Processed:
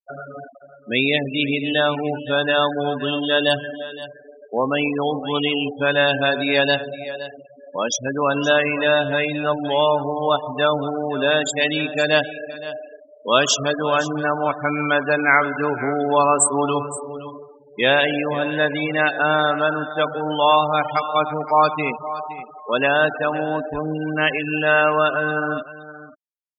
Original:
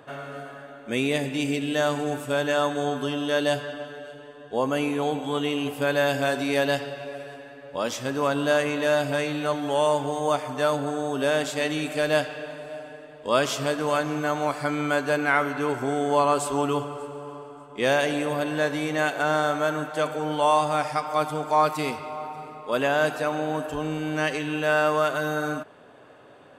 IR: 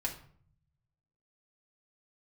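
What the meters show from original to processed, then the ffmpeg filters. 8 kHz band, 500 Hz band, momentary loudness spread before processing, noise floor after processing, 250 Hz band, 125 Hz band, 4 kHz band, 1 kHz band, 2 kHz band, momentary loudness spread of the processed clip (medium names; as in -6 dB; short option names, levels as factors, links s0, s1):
+9.5 dB, +4.0 dB, 15 LU, -47 dBFS, +3.5 dB, +3.0 dB, +9.0 dB, +5.0 dB, +7.5 dB, 14 LU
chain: -af "afftfilt=real='re*gte(hypot(re,im),0.0501)':imag='im*gte(hypot(re,im),0.0501)':win_size=1024:overlap=0.75,crystalizer=i=5.5:c=0,aecho=1:1:518:0.158,volume=1.41"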